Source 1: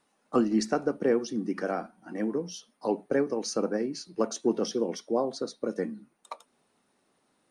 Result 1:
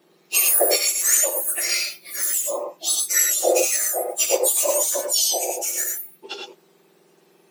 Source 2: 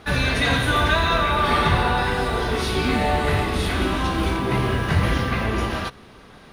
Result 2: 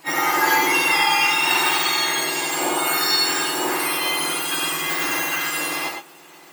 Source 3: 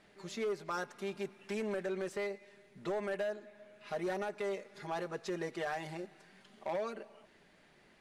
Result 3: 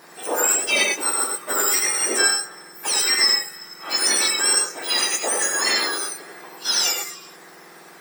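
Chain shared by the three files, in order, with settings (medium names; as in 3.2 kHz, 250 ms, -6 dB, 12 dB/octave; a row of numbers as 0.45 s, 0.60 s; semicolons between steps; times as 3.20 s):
spectrum inverted on a logarithmic axis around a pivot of 1.8 kHz; gated-style reverb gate 130 ms rising, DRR 1 dB; normalise loudness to -19 LUFS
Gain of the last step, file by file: +12.0 dB, +3.0 dB, +20.5 dB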